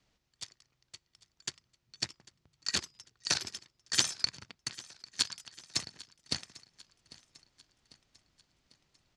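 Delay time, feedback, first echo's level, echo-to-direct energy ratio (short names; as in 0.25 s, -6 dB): 0.797 s, 53%, -20.0 dB, -18.5 dB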